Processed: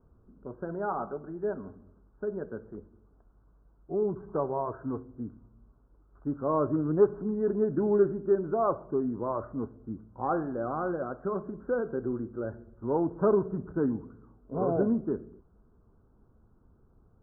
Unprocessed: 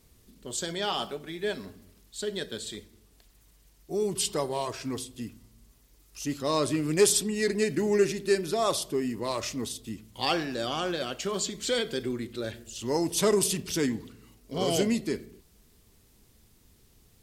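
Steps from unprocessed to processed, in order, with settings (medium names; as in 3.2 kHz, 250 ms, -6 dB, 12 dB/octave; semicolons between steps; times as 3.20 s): steep low-pass 1.5 kHz 96 dB/octave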